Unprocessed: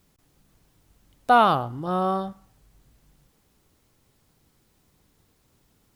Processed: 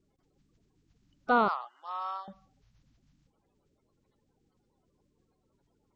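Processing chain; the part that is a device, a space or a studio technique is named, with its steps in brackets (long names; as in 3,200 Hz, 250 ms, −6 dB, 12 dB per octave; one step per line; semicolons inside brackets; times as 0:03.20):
clip after many re-uploads (low-pass filter 5,700 Hz 24 dB per octave; spectral magnitudes quantised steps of 30 dB)
0:01.48–0:02.28: high-pass filter 860 Hz 24 dB per octave
level −7.5 dB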